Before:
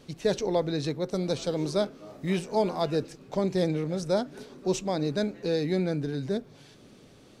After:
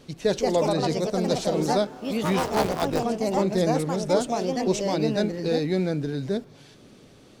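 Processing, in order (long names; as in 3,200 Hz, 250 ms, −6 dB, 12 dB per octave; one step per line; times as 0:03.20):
0:02.56–0:03.02: sub-harmonics by changed cycles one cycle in 3, muted
delay with pitch and tempo change per echo 220 ms, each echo +3 semitones, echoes 2
level +2.5 dB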